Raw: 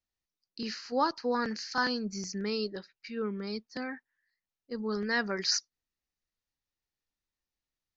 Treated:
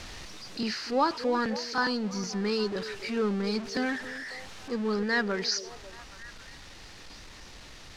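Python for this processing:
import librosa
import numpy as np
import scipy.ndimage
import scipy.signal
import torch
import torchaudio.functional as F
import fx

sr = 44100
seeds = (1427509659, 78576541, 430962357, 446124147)

y = x + 0.5 * 10.0 ** (-36.5 / 20.0) * np.sign(x)
y = scipy.signal.sosfilt(scipy.signal.butter(2, 5500.0, 'lowpass', fs=sr, output='sos'), y)
y = fx.rider(y, sr, range_db=4, speed_s=2.0)
y = fx.echo_stepped(y, sr, ms=273, hz=390.0, octaves=0.7, feedback_pct=70, wet_db=-10.0)
y = y * librosa.db_to_amplitude(1.5)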